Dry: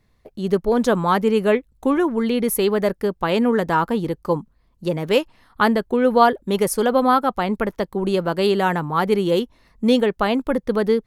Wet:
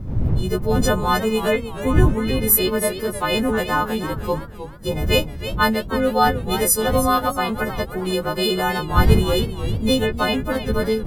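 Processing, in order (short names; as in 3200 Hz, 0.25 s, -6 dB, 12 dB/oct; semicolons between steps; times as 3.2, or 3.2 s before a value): frequency quantiser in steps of 3 st; wind noise 110 Hz -22 dBFS; warbling echo 0.313 s, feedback 37%, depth 112 cents, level -11.5 dB; gain -2.5 dB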